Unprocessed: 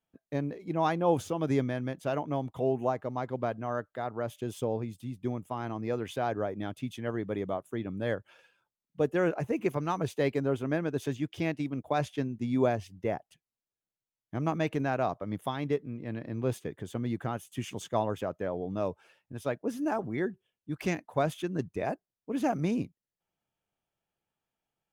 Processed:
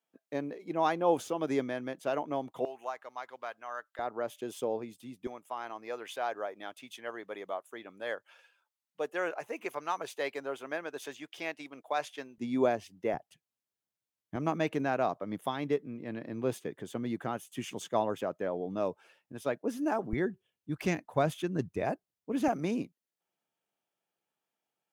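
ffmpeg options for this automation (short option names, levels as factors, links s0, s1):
-af "asetnsamples=n=441:p=0,asendcmd='2.65 highpass f 1100;3.99 highpass f 310;5.27 highpass f 650;12.38 highpass f 240;13.14 highpass f 89;14.36 highpass f 190;20.13 highpass f 55;22.48 highpass f 230',highpass=290"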